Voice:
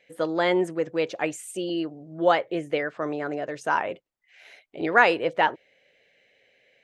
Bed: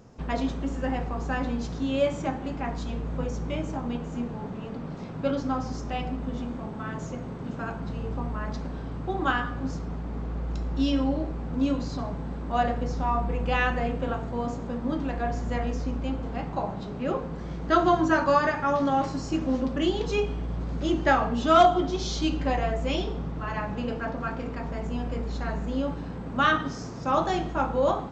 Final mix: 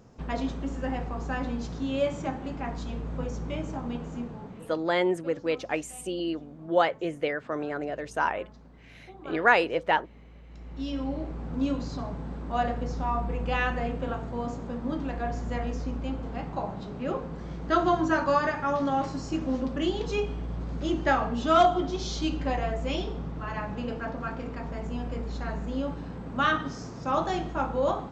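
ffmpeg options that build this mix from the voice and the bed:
-filter_complex "[0:a]adelay=4500,volume=-2.5dB[a];[1:a]volume=13.5dB,afade=t=out:st=4.07:d=0.84:silence=0.158489,afade=t=in:st=10.48:d=0.97:silence=0.158489[b];[a][b]amix=inputs=2:normalize=0"

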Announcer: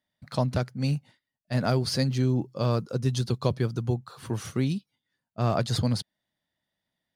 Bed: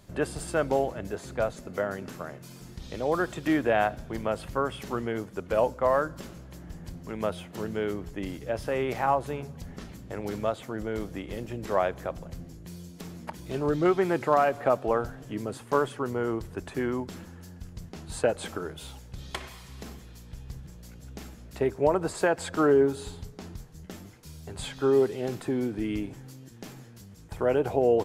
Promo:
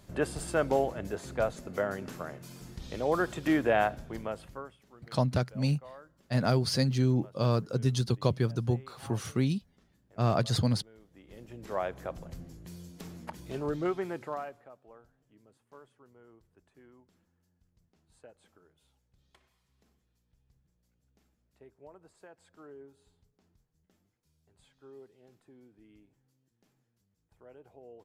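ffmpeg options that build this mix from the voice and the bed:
-filter_complex "[0:a]adelay=4800,volume=-1.5dB[a];[1:a]volume=20dB,afade=t=out:st=3.78:d=0.99:silence=0.0668344,afade=t=in:st=11.1:d=1.13:silence=0.0841395,afade=t=out:st=13.3:d=1.38:silence=0.0530884[b];[a][b]amix=inputs=2:normalize=0"

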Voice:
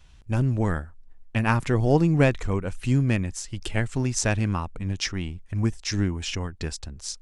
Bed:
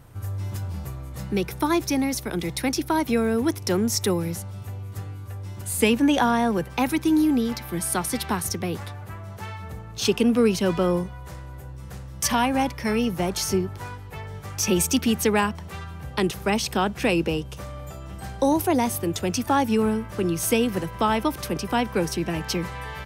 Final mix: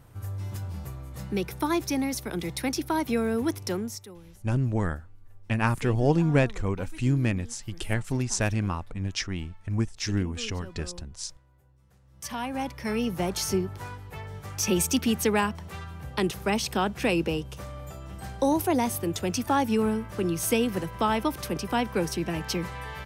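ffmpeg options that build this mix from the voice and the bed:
-filter_complex "[0:a]adelay=4150,volume=-2.5dB[a];[1:a]volume=16dB,afade=t=out:st=3.58:d=0.48:silence=0.112202,afade=t=in:st=12.01:d=1.2:silence=0.1[b];[a][b]amix=inputs=2:normalize=0"

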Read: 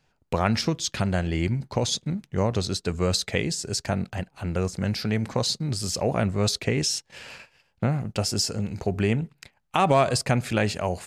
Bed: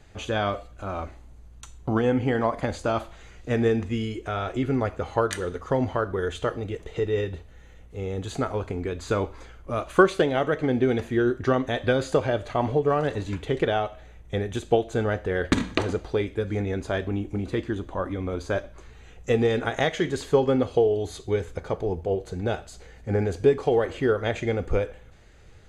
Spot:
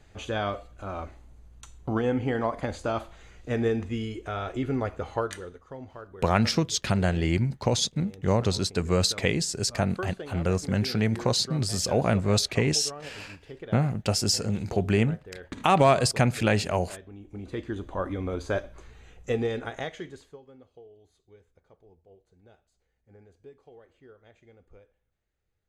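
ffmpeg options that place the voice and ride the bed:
-filter_complex "[0:a]adelay=5900,volume=0.5dB[a];[1:a]volume=12.5dB,afade=t=out:st=5.08:d=0.53:silence=0.199526,afade=t=in:st=17.18:d=0.82:silence=0.158489,afade=t=out:st=18.77:d=1.61:silence=0.0375837[b];[a][b]amix=inputs=2:normalize=0"

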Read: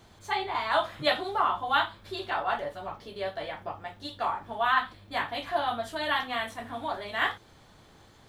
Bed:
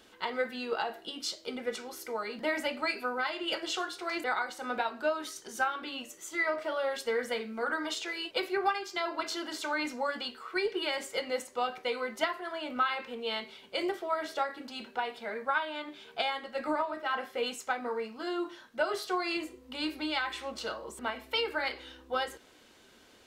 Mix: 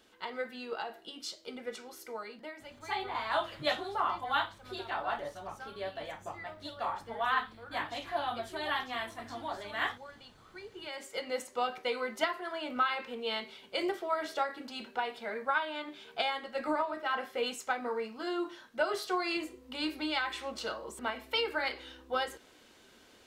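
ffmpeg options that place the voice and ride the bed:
-filter_complex "[0:a]adelay=2600,volume=-5.5dB[a];[1:a]volume=11dB,afade=t=out:st=2.18:d=0.37:silence=0.266073,afade=t=in:st=10.71:d=0.78:silence=0.149624[b];[a][b]amix=inputs=2:normalize=0"

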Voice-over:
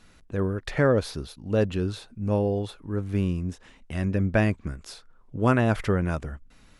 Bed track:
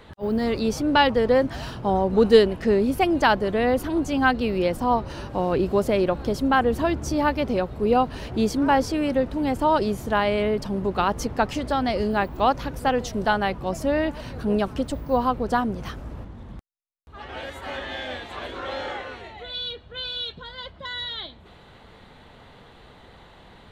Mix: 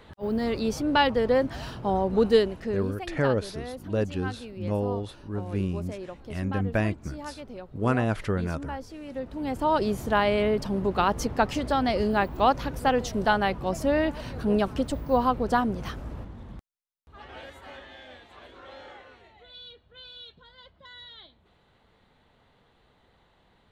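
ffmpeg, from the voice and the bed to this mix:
-filter_complex "[0:a]adelay=2400,volume=-3.5dB[a];[1:a]volume=12.5dB,afade=t=out:st=2.15:d=0.84:silence=0.211349,afade=t=in:st=9.05:d=0.95:silence=0.158489,afade=t=out:st=16.1:d=1.83:silence=0.211349[b];[a][b]amix=inputs=2:normalize=0"

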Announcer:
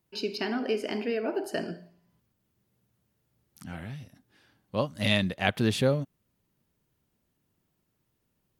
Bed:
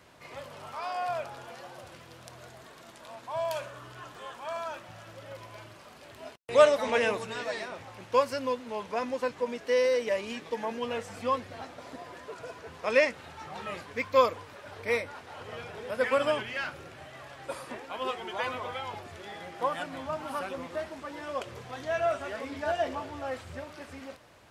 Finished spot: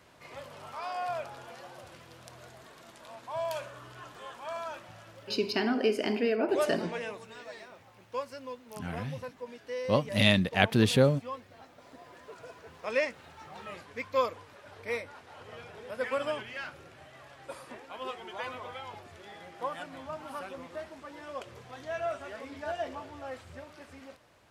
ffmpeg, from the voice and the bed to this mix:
-filter_complex "[0:a]adelay=5150,volume=2dB[a];[1:a]volume=3.5dB,afade=t=out:st=4.84:d=0.82:silence=0.354813,afade=t=in:st=11.67:d=0.65:silence=0.530884[b];[a][b]amix=inputs=2:normalize=0"

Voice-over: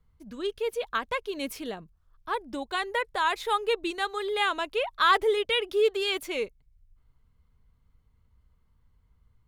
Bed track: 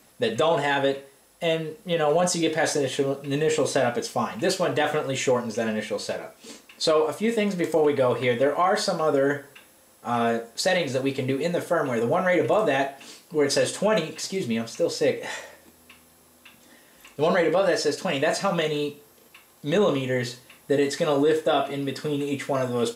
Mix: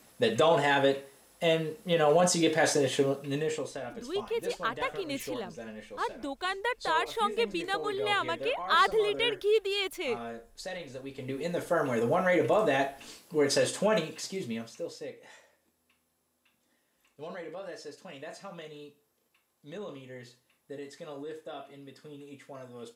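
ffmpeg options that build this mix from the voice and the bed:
-filter_complex "[0:a]adelay=3700,volume=-2.5dB[a];[1:a]volume=10.5dB,afade=t=out:st=3.01:d=0.71:silence=0.188365,afade=t=in:st=11.1:d=0.68:silence=0.237137,afade=t=out:st=13.83:d=1.27:silence=0.158489[b];[a][b]amix=inputs=2:normalize=0"

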